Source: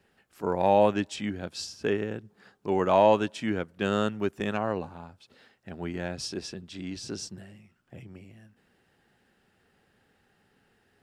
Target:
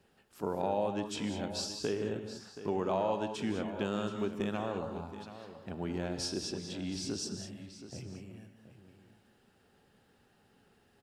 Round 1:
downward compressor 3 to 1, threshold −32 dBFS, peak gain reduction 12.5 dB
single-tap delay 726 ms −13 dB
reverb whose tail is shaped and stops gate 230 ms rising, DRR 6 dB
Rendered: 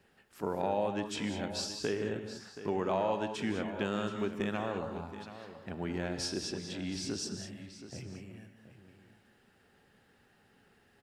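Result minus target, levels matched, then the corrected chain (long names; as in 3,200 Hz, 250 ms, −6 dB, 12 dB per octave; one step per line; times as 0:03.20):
2,000 Hz band +3.5 dB
downward compressor 3 to 1, threshold −32 dBFS, peak gain reduction 12.5 dB
parametric band 1,900 Hz −6 dB 0.78 octaves
single-tap delay 726 ms −13 dB
reverb whose tail is shaped and stops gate 230 ms rising, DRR 6 dB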